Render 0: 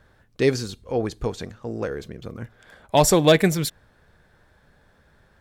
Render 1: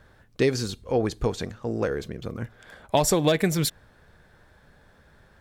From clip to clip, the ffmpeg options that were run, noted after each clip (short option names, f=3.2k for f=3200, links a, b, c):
-af "acompressor=threshold=-19dB:ratio=10,volume=2dB"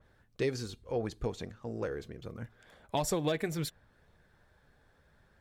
-af "flanger=delay=0.3:depth=2.4:regen=-71:speed=0.73:shape=sinusoidal,adynamicequalizer=threshold=0.00398:dfrequency=3700:dqfactor=0.7:tfrequency=3700:tqfactor=0.7:attack=5:release=100:ratio=0.375:range=2.5:mode=cutabove:tftype=highshelf,volume=-5.5dB"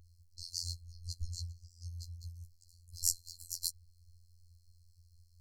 -af "afftfilt=real='re*(1-between(b*sr/4096,100,4100))':imag='im*(1-between(b*sr/4096,100,4100))':win_size=4096:overlap=0.75,afftfilt=real='hypot(re,im)*cos(PI*b)':imag='0':win_size=2048:overlap=0.75,volume=10dB"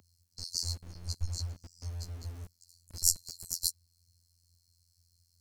-filter_complex "[0:a]acrossover=split=120|580|3800[a][b][c][d];[a]aeval=exprs='val(0)*gte(abs(val(0)),0.00251)':c=same[e];[c]tremolo=f=280:d=0.621[f];[e][b][f][d]amix=inputs=4:normalize=0,volume=5.5dB"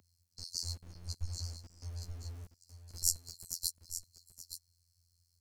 -af "aecho=1:1:873:0.282,volume=-4.5dB"